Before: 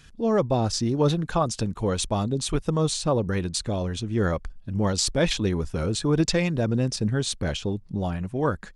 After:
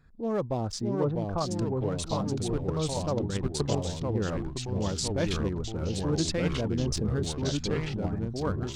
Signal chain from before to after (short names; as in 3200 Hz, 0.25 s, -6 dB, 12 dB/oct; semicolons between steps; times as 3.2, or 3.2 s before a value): Wiener smoothing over 15 samples; 0.94–1.38 LPF 1300 Hz 12 dB/oct; echoes that change speed 0.588 s, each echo -2 st, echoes 3; 3.16–3.76 transient shaper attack +9 dB, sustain -6 dB; 6.79–7.23 fast leveller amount 70%; gain -7 dB